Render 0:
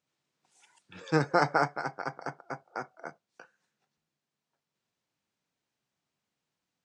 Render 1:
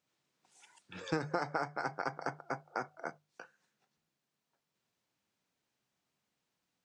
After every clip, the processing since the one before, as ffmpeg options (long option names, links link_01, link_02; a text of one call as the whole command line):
ffmpeg -i in.wav -af "bandreject=frequency=50:width_type=h:width=6,bandreject=frequency=100:width_type=h:width=6,bandreject=frequency=150:width_type=h:width=6,acompressor=threshold=-31dB:ratio=8,volume=1dB" out.wav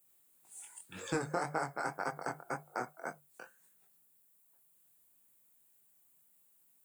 ffmpeg -i in.wav -af "flanger=delay=19:depth=6.1:speed=1.9,aexciter=amount=11.5:drive=7.7:freq=8100,volume=3dB" out.wav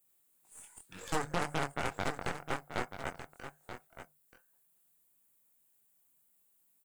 ffmpeg -i in.wav -filter_complex "[0:a]aeval=exprs='0.112*(cos(1*acos(clip(val(0)/0.112,-1,1)))-cos(1*PI/2))+0.0447*(cos(6*acos(clip(val(0)/0.112,-1,1)))-cos(6*PI/2))':channel_layout=same,asplit=2[link_01][link_02];[link_02]aecho=0:1:932:0.299[link_03];[link_01][link_03]amix=inputs=2:normalize=0,volume=-3dB" out.wav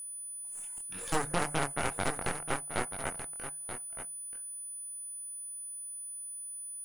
ffmpeg -i in.wav -af "aeval=exprs='val(0)+0.00794*sin(2*PI*9900*n/s)':channel_layout=same,volume=2.5dB" out.wav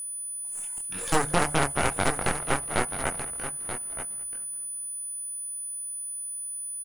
ffmpeg -i in.wav -filter_complex "[0:a]asplit=6[link_01][link_02][link_03][link_04][link_05][link_06];[link_02]adelay=208,afreqshift=-71,volume=-17.5dB[link_07];[link_03]adelay=416,afreqshift=-142,volume=-22.9dB[link_08];[link_04]adelay=624,afreqshift=-213,volume=-28.2dB[link_09];[link_05]adelay=832,afreqshift=-284,volume=-33.6dB[link_10];[link_06]adelay=1040,afreqshift=-355,volume=-38.9dB[link_11];[link_01][link_07][link_08][link_09][link_10][link_11]amix=inputs=6:normalize=0,volume=7dB" out.wav